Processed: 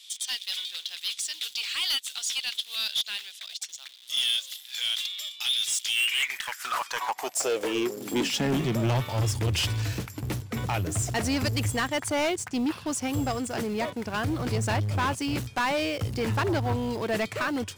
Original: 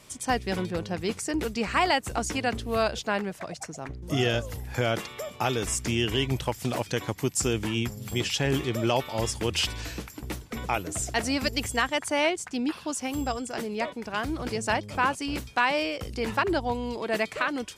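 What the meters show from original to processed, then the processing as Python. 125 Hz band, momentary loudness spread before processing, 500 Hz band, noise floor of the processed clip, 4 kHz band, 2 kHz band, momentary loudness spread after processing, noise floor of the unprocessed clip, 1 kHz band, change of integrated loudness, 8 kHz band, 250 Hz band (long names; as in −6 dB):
+3.0 dB, 7 LU, −2.5 dB, −48 dBFS, +4.5 dB, −1.5 dB, 7 LU, −47 dBFS, −3.0 dB, +0.5 dB, +1.5 dB, −0.5 dB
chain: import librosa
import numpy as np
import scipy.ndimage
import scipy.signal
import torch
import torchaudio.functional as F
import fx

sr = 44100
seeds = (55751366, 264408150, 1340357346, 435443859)

p1 = fx.quant_dither(x, sr, seeds[0], bits=6, dither='none')
p2 = x + (p1 * librosa.db_to_amplitude(-9.0))
p3 = fx.filter_sweep_highpass(p2, sr, from_hz=3500.0, to_hz=100.0, start_s=5.79, end_s=9.12, q=6.3)
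y = 10.0 ** (-21.5 / 20.0) * np.tanh(p3 / 10.0 ** (-21.5 / 20.0))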